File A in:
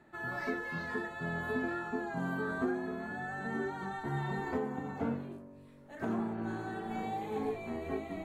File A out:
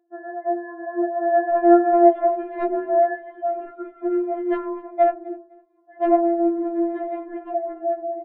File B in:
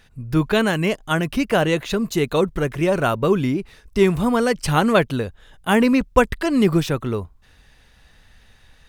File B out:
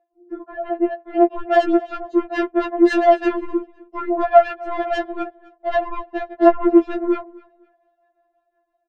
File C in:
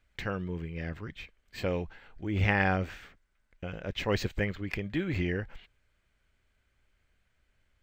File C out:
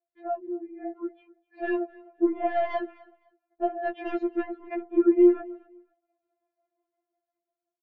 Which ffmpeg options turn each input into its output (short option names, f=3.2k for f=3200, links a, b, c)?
-filter_complex "[0:a]afftdn=nr=12:nf=-42,highpass=210,asplit=2[a][b];[b]acompressor=threshold=-33dB:ratio=5,volume=2.5dB[c];[a][c]amix=inputs=2:normalize=0,alimiter=limit=-12dB:level=0:latency=1:release=22,dynaudnorm=f=360:g=7:m=12.5dB,lowpass=f=620:t=q:w=6.4,asoftclip=type=tanh:threshold=-6dB,tremolo=f=5.7:d=0.55,asplit=2[d][e];[e]aecho=0:1:255|510:0.0708|0.017[f];[d][f]amix=inputs=2:normalize=0,afftfilt=real='re*4*eq(mod(b,16),0)':imag='im*4*eq(mod(b,16),0)':win_size=2048:overlap=0.75,volume=-1.5dB"